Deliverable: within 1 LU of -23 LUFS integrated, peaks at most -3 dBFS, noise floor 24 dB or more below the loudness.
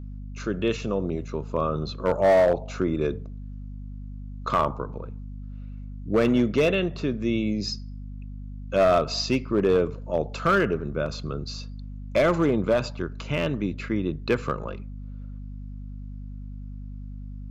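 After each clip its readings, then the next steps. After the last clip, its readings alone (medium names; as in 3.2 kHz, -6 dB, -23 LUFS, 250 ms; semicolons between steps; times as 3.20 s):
clipped samples 0.9%; clipping level -14.0 dBFS; hum 50 Hz; highest harmonic 250 Hz; hum level -34 dBFS; loudness -25.0 LUFS; peak level -14.0 dBFS; loudness target -23.0 LUFS
-> clip repair -14 dBFS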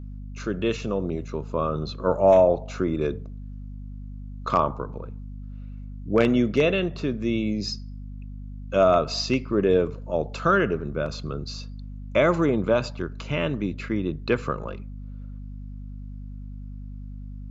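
clipped samples 0.0%; hum 50 Hz; highest harmonic 250 Hz; hum level -34 dBFS
-> de-hum 50 Hz, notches 5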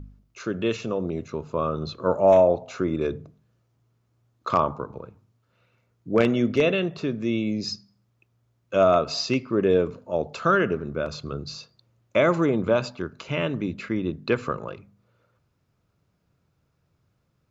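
hum not found; loudness -24.5 LUFS; peak level -5.0 dBFS; loudness target -23.0 LUFS
-> trim +1.5 dB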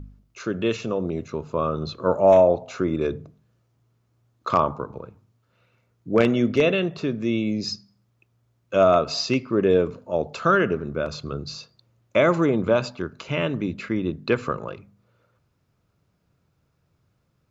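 loudness -23.0 LUFS; peak level -3.5 dBFS; noise floor -69 dBFS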